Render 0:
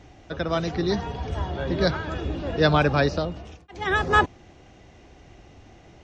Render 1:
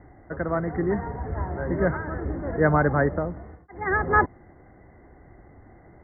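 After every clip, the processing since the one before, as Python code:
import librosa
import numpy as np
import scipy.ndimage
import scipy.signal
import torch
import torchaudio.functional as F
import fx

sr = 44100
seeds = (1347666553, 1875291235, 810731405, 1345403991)

y = scipy.signal.sosfilt(scipy.signal.cheby1(10, 1.0, 2100.0, 'lowpass', fs=sr, output='sos'), x)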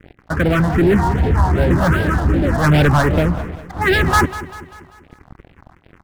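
y = fx.leveller(x, sr, passes=5)
y = fx.phaser_stages(y, sr, stages=4, low_hz=400.0, high_hz=1200.0, hz=2.6, feedback_pct=0)
y = fx.echo_feedback(y, sr, ms=196, feedback_pct=50, wet_db=-15)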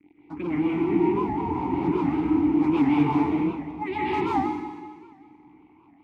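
y = fx.vowel_filter(x, sr, vowel='u')
y = fx.rev_plate(y, sr, seeds[0], rt60_s=1.3, hf_ratio=1.0, predelay_ms=115, drr_db=-5.5)
y = fx.record_warp(y, sr, rpm=78.0, depth_cents=160.0)
y = F.gain(torch.from_numpy(y), -2.5).numpy()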